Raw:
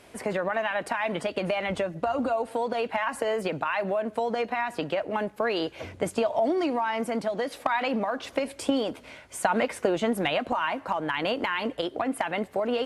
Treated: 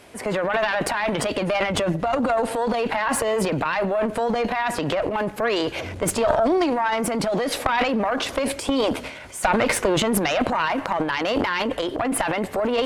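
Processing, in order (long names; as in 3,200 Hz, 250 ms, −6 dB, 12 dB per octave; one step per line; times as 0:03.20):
transient designer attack −2 dB, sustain +11 dB
harmonic generator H 2 −6 dB, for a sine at −11 dBFS
level +4.5 dB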